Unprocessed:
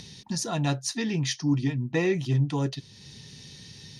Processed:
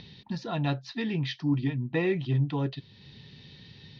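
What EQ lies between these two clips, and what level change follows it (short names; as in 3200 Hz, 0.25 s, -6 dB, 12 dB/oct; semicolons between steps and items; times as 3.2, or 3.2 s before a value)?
steep low-pass 4100 Hz 36 dB/oct; -2.0 dB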